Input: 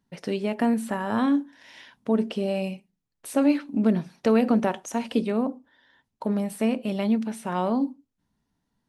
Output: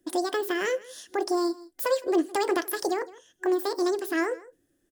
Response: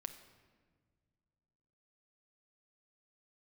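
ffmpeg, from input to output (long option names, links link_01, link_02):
-filter_complex "[0:a]asetrate=79821,aresample=44100,superequalizer=6b=3.55:8b=2:11b=2:16b=1.41,aecho=1:1:161:0.0794,asplit=2[link_01][link_02];[link_02]acompressor=threshold=-27dB:ratio=6,volume=-2dB[link_03];[link_01][link_03]amix=inputs=2:normalize=0,bass=frequency=250:gain=5,treble=frequency=4000:gain=11,volume=-8.5dB"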